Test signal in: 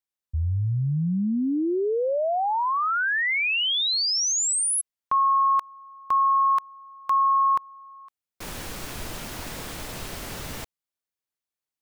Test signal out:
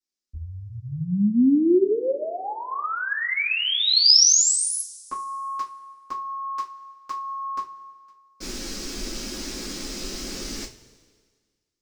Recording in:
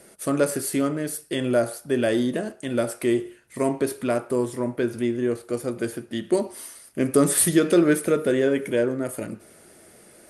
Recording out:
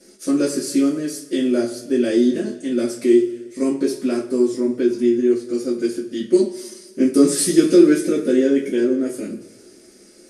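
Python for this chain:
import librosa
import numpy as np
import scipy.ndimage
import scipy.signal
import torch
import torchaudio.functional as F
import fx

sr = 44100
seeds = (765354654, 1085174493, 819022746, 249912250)

y = fx.curve_eq(x, sr, hz=(170.0, 400.0, 720.0, 3400.0, 5500.0, 12000.0), db=(0, 9, -7, 2, 11, -6))
y = fx.rev_double_slope(y, sr, seeds[0], early_s=0.23, late_s=1.7, knee_db=-22, drr_db=-8.0)
y = y * librosa.db_to_amplitude(-9.5)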